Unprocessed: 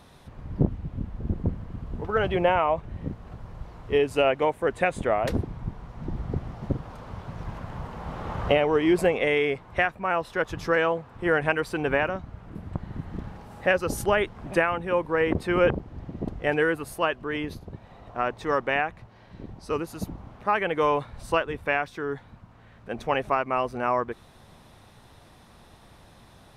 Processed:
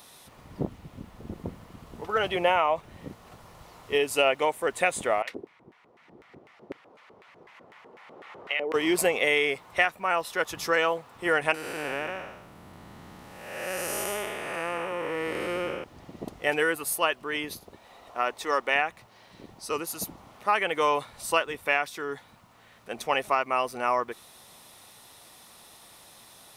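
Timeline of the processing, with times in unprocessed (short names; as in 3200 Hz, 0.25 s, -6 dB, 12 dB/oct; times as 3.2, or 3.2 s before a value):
5.22–8.74 LFO band-pass square 4 Hz 390–2100 Hz
11.54–15.84 time blur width 0.37 s
17.63–18.74 bell 140 Hz -11 dB 0.73 oct
whole clip: RIAA curve recording; notch 1600 Hz, Q 13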